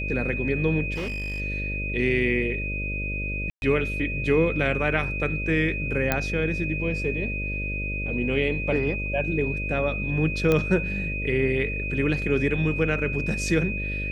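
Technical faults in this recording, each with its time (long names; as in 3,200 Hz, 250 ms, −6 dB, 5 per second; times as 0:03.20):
mains buzz 50 Hz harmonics 12 −31 dBFS
whistle 2,500 Hz −30 dBFS
0:00.94–0:01.41: clipping −26.5 dBFS
0:03.50–0:03.62: drop-out 121 ms
0:06.12: click −7 dBFS
0:10.52: click −10 dBFS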